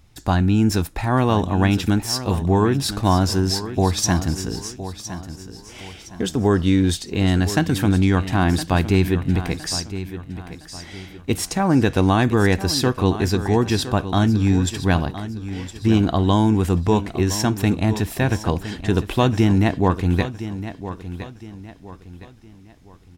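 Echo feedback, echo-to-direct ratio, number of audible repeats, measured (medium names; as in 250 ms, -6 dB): 36%, -12.0 dB, 3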